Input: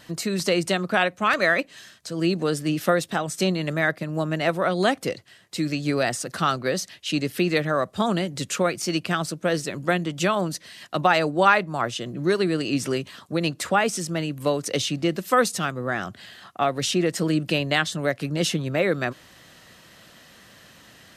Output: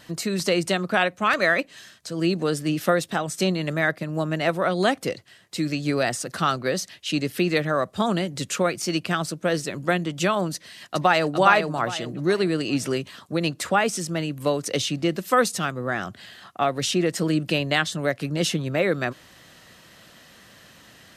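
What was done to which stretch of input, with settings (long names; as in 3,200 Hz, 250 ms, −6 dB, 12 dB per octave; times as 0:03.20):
0:10.54–0:11.34: delay throw 410 ms, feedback 35%, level −5.5 dB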